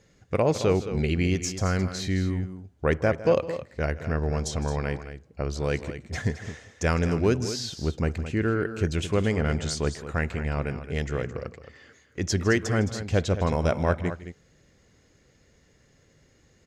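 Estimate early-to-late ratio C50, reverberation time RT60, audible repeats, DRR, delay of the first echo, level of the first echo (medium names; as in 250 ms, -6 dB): no reverb, no reverb, 2, no reverb, 158 ms, -17.5 dB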